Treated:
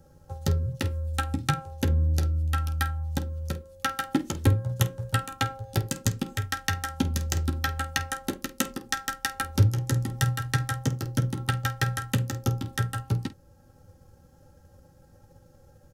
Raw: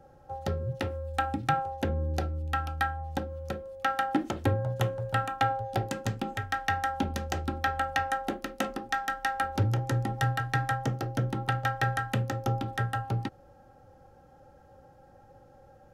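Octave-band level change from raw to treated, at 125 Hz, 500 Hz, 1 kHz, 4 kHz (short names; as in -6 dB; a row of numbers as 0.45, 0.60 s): +5.0, -3.5, -5.0, +5.5 dB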